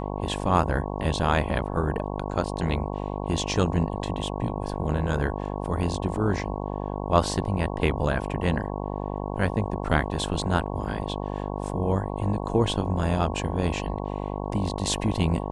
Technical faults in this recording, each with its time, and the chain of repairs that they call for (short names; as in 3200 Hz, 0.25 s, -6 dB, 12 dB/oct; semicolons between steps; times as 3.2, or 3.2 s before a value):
buzz 50 Hz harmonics 22 -31 dBFS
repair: de-hum 50 Hz, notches 22